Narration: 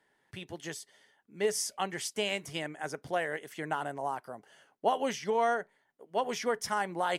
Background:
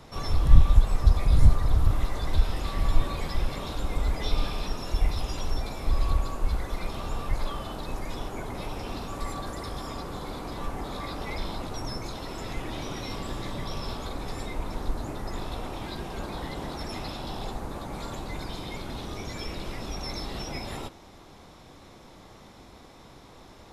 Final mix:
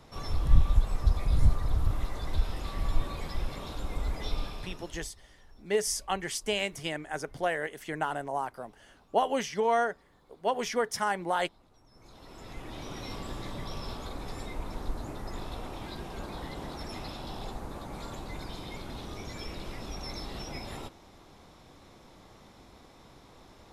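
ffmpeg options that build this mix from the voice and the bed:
ffmpeg -i stem1.wav -i stem2.wav -filter_complex "[0:a]adelay=4300,volume=2dB[link_01];[1:a]volume=18dB,afade=type=out:start_time=4.26:duration=0.85:silence=0.0749894,afade=type=in:start_time=11.91:duration=1.16:silence=0.0668344[link_02];[link_01][link_02]amix=inputs=2:normalize=0" out.wav

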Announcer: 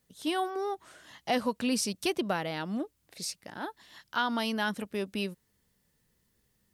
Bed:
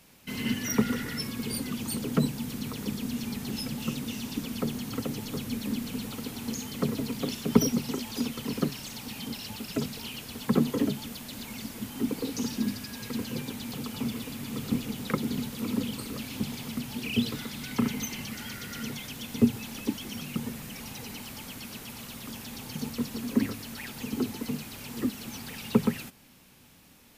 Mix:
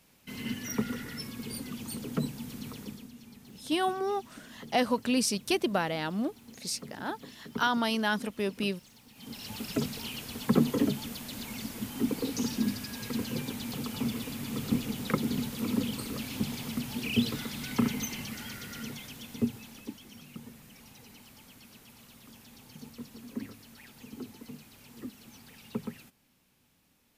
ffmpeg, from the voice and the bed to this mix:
ffmpeg -i stem1.wav -i stem2.wav -filter_complex "[0:a]adelay=3450,volume=2dB[link_01];[1:a]volume=11dB,afade=type=out:start_time=2.72:duration=0.39:silence=0.281838,afade=type=in:start_time=9.14:duration=0.46:silence=0.141254,afade=type=out:start_time=17.76:duration=2.25:silence=0.237137[link_02];[link_01][link_02]amix=inputs=2:normalize=0" out.wav

